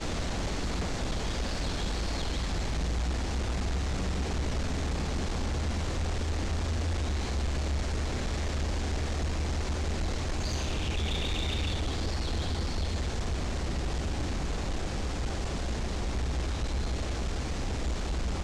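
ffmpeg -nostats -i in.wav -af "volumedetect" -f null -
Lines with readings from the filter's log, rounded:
mean_volume: -30.1 dB
max_volume: -24.9 dB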